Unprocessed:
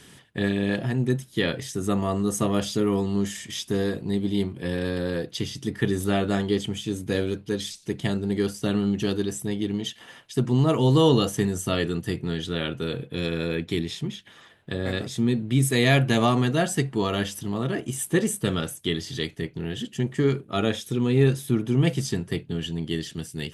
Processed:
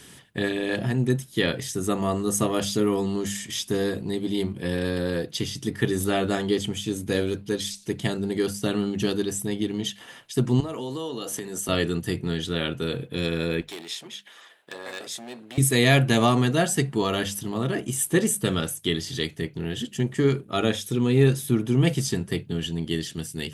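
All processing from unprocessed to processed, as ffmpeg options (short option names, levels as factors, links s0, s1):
-filter_complex "[0:a]asettb=1/sr,asplit=3[s0][s1][s2];[s0]atrim=end=10.604[s3];[s1]atrim=start=10.6:end=11.69,asetpts=PTS-STARTPTS,afade=t=in:d=0.004:c=qsin,afade=t=out:st=1.086:d=0.004:c=qsin,highpass=230,acompressor=threshold=0.0355:ratio=10:attack=3.2:release=140:knee=1:detection=peak[s4];[s2]atrim=start=11.686[s5];[s3][s4]acrossfade=d=0.004:c1=hsin:c2=qsin[s6];[s6][s5]acrossfade=d=0.004:c1=qsin:c2=hsin,asettb=1/sr,asplit=3[s7][s8][s9];[s7]atrim=end=13.614[s10];[s8]atrim=start=13.61:end=15.58,asetpts=PTS-STARTPTS,afade=t=in:d=0.004:c=qsin,afade=t=out:st=1.966:d=0.004:c=qsin,acompressor=threshold=0.0398:ratio=2:attack=3.2:release=140:knee=1:detection=peak,volume=20,asoftclip=hard,volume=0.0501,highpass=500[s11];[s9]atrim=start=15.576[s12];[s10][s11]acrossfade=d=0.004:c1=hsin:c2=qsin[s13];[s13][s12]acrossfade=d=0.004:c1=qsin:c2=hsin,highshelf=f=7200:g=6,bandreject=f=50:t=h:w=6,bandreject=f=100:t=h:w=6,bandreject=f=150:t=h:w=6,bandreject=f=200:t=h:w=6,volume=1.12"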